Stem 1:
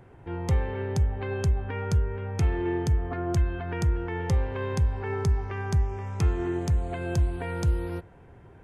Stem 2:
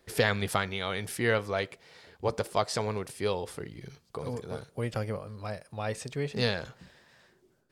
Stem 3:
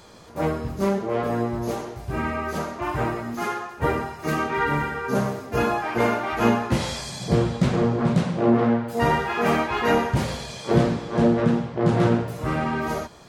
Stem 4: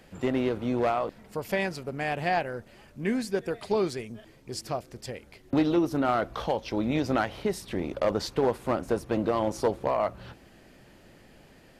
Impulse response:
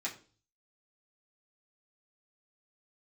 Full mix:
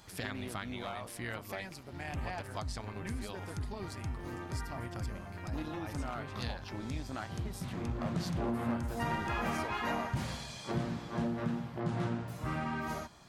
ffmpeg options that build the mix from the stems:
-filter_complex "[0:a]adelay=1650,volume=-9.5dB[a];[1:a]volume=-5.5dB,asplit=2[b][c];[2:a]acompressor=threshold=-22dB:ratio=2.5,volume=-8.5dB[d];[3:a]highshelf=f=7.6k:g=8,volume=-7.5dB[e];[c]apad=whole_len=585648[f];[d][f]sidechaincompress=threshold=-48dB:ratio=8:attack=16:release=1270[g];[a][b][e]amix=inputs=3:normalize=0,tremolo=f=190:d=0.571,acompressor=threshold=-36dB:ratio=2,volume=0dB[h];[g][h]amix=inputs=2:normalize=0,equalizer=f=460:w=2.1:g=-9.5"

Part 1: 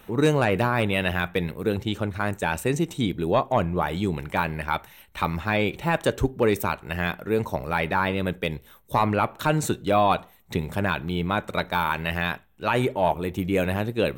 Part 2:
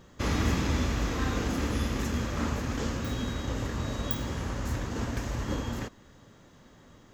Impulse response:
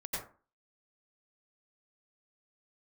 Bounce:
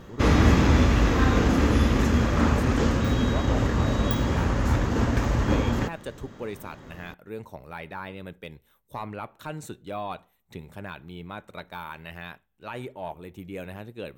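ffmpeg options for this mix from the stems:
-filter_complex "[0:a]volume=-13.5dB[a];[1:a]highshelf=f=4k:g=-9.5,acontrast=69,volume=2.5dB[b];[a][b]amix=inputs=2:normalize=0"

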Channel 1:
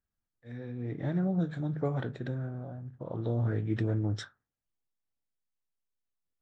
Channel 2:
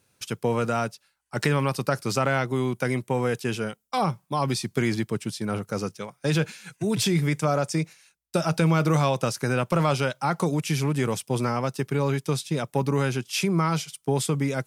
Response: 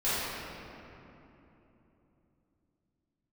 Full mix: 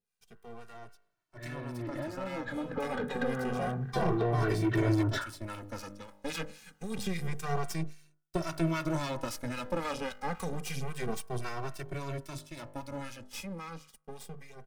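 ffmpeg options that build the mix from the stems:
-filter_complex "[0:a]acompressor=threshold=-37dB:ratio=6,asplit=2[a][b];[b]highpass=f=720:p=1,volume=24dB,asoftclip=type=tanh:threshold=-29.5dB[c];[a][c]amix=inputs=2:normalize=0,lowpass=f=1.7k:p=1,volume=-6dB,adelay=950,volume=-2dB[d];[1:a]bandreject=f=50.54:t=h:w=4,bandreject=f=101.08:t=h:w=4,bandreject=f=151.62:t=h:w=4,bandreject=f=202.16:t=h:w=4,bandreject=f=252.7:t=h:w=4,bandreject=f=303.24:t=h:w=4,bandreject=f=353.78:t=h:w=4,bandreject=f=404.32:t=h:w=4,bandreject=f=454.86:t=h:w=4,bandreject=f=505.4:t=h:w=4,bandreject=f=555.94:t=h:w=4,bandreject=f=606.48:t=h:w=4,bandreject=f=657.02:t=h:w=4,bandreject=f=707.56:t=h:w=4,bandreject=f=758.1:t=h:w=4,bandreject=f=808.64:t=h:w=4,bandreject=f=859.18:t=h:w=4,bandreject=f=909.72:t=h:w=4,bandreject=f=960.26:t=h:w=4,bandreject=f=1.0108k:t=h:w=4,bandreject=f=1.06134k:t=h:w=4,bandreject=f=1.11188k:t=h:w=4,bandreject=f=1.16242k:t=h:w=4,bandreject=f=1.21296k:t=h:w=4,bandreject=f=1.2635k:t=h:w=4,bandreject=f=1.31404k:t=h:w=4,bandreject=f=1.36458k:t=h:w=4,bandreject=f=1.41512k:t=h:w=4,bandreject=f=1.46566k:t=h:w=4,bandreject=f=1.5162k:t=h:w=4,bandreject=f=1.56674k:t=h:w=4,bandreject=f=1.61728k:t=h:w=4,acrossover=split=940[e][f];[e]aeval=exprs='val(0)*(1-0.7/2+0.7/2*cos(2*PI*3.7*n/s))':c=same[g];[f]aeval=exprs='val(0)*(1-0.7/2-0.7/2*cos(2*PI*3.7*n/s))':c=same[h];[g][h]amix=inputs=2:normalize=0,aeval=exprs='max(val(0),0)':c=same,volume=-13.5dB[i];[d][i]amix=inputs=2:normalize=0,dynaudnorm=f=630:g=9:m=13.5dB,asplit=2[j][k];[k]adelay=2.1,afreqshift=-0.28[l];[j][l]amix=inputs=2:normalize=1"

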